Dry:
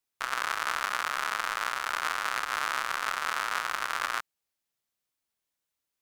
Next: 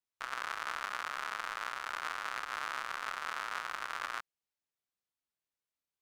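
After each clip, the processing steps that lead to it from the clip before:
high-shelf EQ 7,500 Hz −8 dB
level −7.5 dB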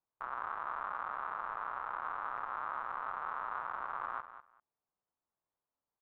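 soft clipping −31.5 dBFS, distortion −11 dB
low-pass with resonance 970 Hz, resonance Q 1.7
repeating echo 197 ms, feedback 17%, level −12 dB
level +3.5 dB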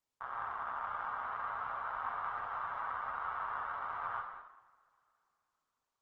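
stylus tracing distortion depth 0.021 ms
coupled-rooms reverb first 0.86 s, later 3.3 s, from −24 dB, DRR 0.5 dB
level −2.5 dB
Opus 16 kbit/s 48,000 Hz

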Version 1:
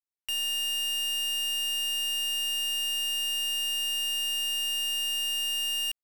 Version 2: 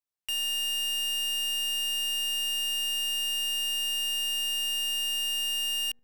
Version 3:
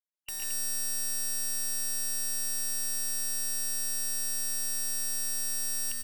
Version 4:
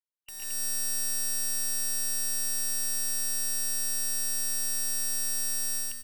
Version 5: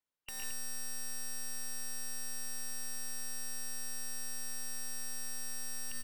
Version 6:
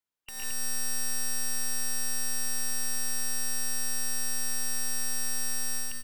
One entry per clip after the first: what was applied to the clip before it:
delay with a low-pass on its return 75 ms, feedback 45%, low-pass 430 Hz, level −14 dB
gate on every frequency bin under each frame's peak −10 dB weak; multi-tap delay 114/135/138/148/222 ms −4.5/−8.5/−3.5/−8/−5.5 dB
automatic gain control gain up to 9.5 dB; level −7.5 dB
high-shelf EQ 4,000 Hz −9.5 dB; brickwall limiter −35.5 dBFS, peak gain reduction 10.5 dB; level +6 dB
notch filter 570 Hz, Q 14; automatic gain control gain up to 10 dB

